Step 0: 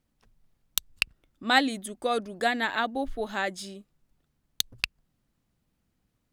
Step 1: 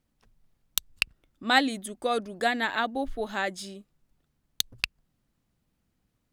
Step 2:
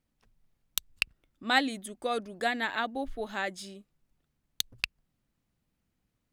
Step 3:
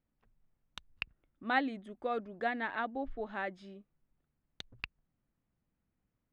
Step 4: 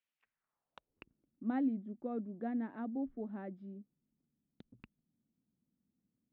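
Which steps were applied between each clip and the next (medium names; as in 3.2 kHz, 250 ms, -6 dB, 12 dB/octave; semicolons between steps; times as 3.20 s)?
no audible change
peaking EQ 2.3 kHz +2 dB; trim -4 dB
low-pass 2 kHz 12 dB/octave; trim -3.5 dB
band-pass sweep 2.8 kHz -> 230 Hz, 0.15–1.18 s; trim +6 dB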